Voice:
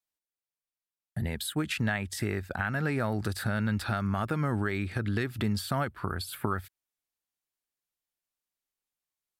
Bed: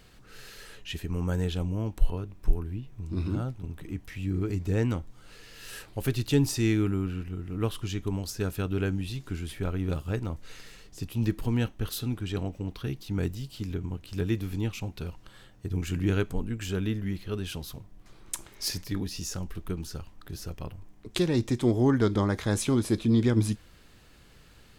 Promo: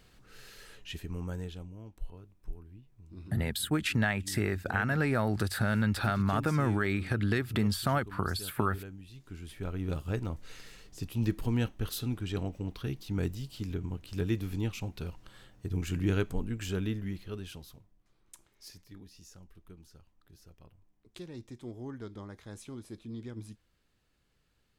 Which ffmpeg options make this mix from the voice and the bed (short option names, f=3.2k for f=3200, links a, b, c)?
-filter_complex "[0:a]adelay=2150,volume=1dB[a];[1:a]volume=9dB,afade=t=out:st=0.94:d=0.78:silence=0.266073,afade=t=in:st=9.1:d=0.99:silence=0.199526,afade=t=out:st=16.71:d=1.3:silence=0.149624[b];[a][b]amix=inputs=2:normalize=0"